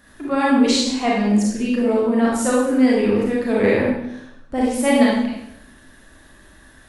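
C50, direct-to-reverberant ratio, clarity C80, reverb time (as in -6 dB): -1.0 dB, -5.5 dB, 3.5 dB, 0.80 s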